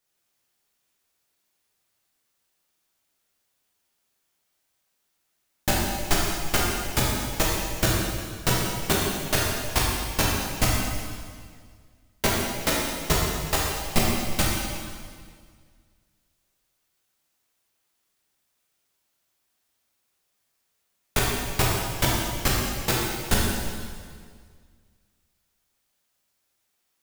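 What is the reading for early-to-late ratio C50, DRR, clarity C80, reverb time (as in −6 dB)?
−1.0 dB, −5.0 dB, 1.0 dB, 1.9 s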